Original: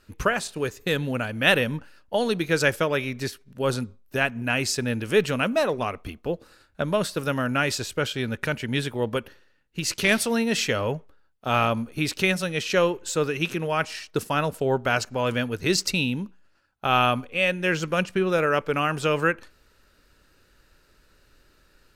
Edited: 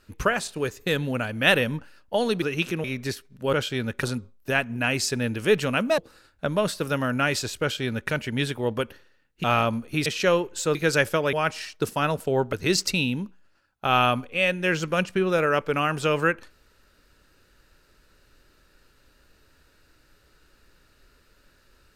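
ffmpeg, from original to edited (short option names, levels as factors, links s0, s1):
-filter_complex "[0:a]asplit=11[s0][s1][s2][s3][s4][s5][s6][s7][s8][s9][s10];[s0]atrim=end=2.422[s11];[s1]atrim=start=13.248:end=13.672[s12];[s2]atrim=start=2.998:end=3.692[s13];[s3]atrim=start=7.968:end=8.472[s14];[s4]atrim=start=3.688:end=5.642[s15];[s5]atrim=start=6.338:end=9.802[s16];[s6]atrim=start=11.478:end=12.102[s17];[s7]atrim=start=12.558:end=13.252[s18];[s8]atrim=start=2.418:end=3.002[s19];[s9]atrim=start=13.668:end=14.872[s20];[s10]atrim=start=15.528[s21];[s11][s12]acrossfade=d=0.004:c1=hsin:c2=hsin[s22];[s22][s13]acrossfade=d=0.004:c1=hsin:c2=hsin[s23];[s23][s14]acrossfade=d=0.004:c1=hsin:c2=hsin[s24];[s24][s15]acrossfade=d=0.004:c1=hsin:c2=hsin[s25];[s25][s16]acrossfade=d=0.004:c1=hsin:c2=hsin[s26];[s26][s17]acrossfade=d=0.004:c1=hsin:c2=hsin[s27];[s27][s18]acrossfade=d=0.004:c1=hsin:c2=hsin[s28];[s28][s19]acrossfade=d=0.004:c1=hsin:c2=hsin[s29];[s29][s20]acrossfade=d=0.004:c1=hsin:c2=hsin[s30];[s30][s21]acrossfade=d=0.004:c1=hsin:c2=hsin"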